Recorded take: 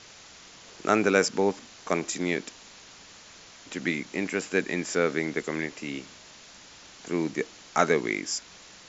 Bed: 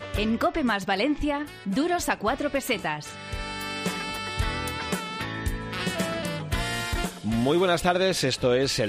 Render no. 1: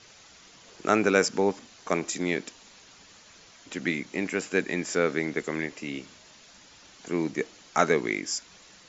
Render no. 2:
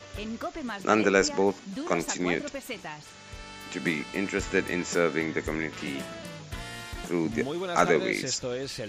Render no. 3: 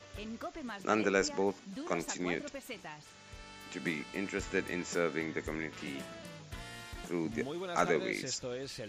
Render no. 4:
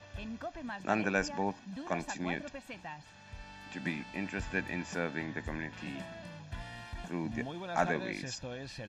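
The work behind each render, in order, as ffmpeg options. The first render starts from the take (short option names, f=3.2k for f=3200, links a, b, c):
-af "afftdn=nr=6:nf=-50"
-filter_complex "[1:a]volume=-10.5dB[a];[0:a][a]amix=inputs=2:normalize=0"
-af "volume=-7.5dB"
-af "aemphasis=mode=reproduction:type=50fm,aecho=1:1:1.2:0.62"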